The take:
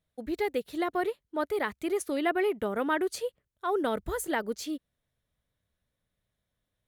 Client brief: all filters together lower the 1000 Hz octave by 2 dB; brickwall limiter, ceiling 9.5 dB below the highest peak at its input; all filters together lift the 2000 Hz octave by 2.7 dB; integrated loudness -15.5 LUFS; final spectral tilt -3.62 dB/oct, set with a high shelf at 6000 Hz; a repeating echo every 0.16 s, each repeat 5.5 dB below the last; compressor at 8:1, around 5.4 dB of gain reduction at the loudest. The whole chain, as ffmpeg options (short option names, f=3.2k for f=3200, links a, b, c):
-af "equalizer=f=1k:t=o:g=-4,equalizer=f=2k:t=o:g=5,highshelf=f=6k:g=-3.5,acompressor=threshold=-29dB:ratio=8,alimiter=level_in=5.5dB:limit=-24dB:level=0:latency=1,volume=-5.5dB,aecho=1:1:160|320|480|640|800|960|1120:0.531|0.281|0.149|0.079|0.0419|0.0222|0.0118,volume=22dB"